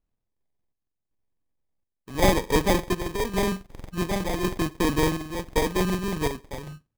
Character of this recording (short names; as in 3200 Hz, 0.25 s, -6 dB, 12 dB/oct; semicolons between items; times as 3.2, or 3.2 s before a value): a buzz of ramps at a fixed pitch in blocks of 32 samples; chopped level 0.9 Hz, depth 60%, duty 65%; aliases and images of a low sample rate 1400 Hz, jitter 0%